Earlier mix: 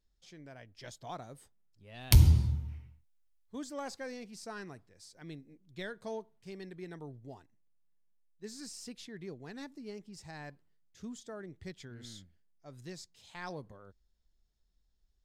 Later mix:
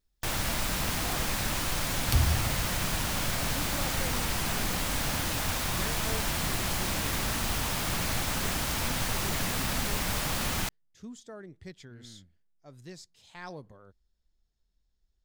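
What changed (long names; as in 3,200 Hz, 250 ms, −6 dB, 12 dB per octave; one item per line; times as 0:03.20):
first sound: unmuted
second sound −8.0 dB
reverb: on, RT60 1.3 s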